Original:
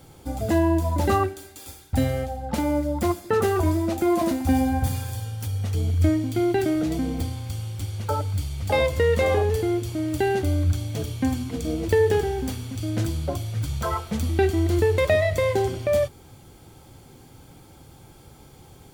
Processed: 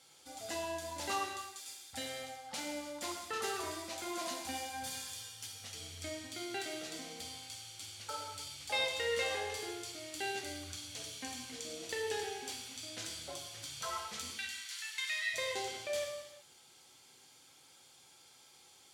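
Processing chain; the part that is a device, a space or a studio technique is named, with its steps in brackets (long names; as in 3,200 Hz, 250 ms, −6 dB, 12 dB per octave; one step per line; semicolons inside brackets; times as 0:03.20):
0:14.30–0:15.34: high-pass filter 1,400 Hz 24 dB per octave
piezo pickup straight into a mixer (low-pass filter 5,500 Hz 12 dB per octave; first difference)
reverb whose tail is shaped and stops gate 380 ms falling, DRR 0.5 dB
level +2 dB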